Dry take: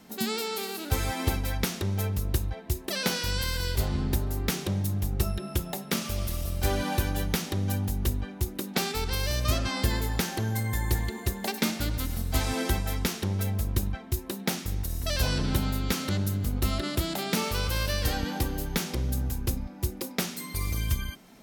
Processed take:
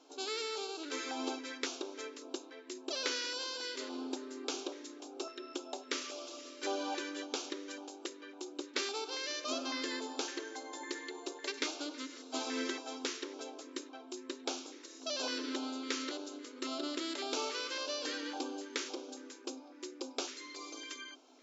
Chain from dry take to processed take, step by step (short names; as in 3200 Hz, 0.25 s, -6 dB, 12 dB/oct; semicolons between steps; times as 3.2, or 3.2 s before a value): LFO notch square 1.8 Hz 750–1900 Hz; FFT band-pass 250–7600 Hz; gain -5 dB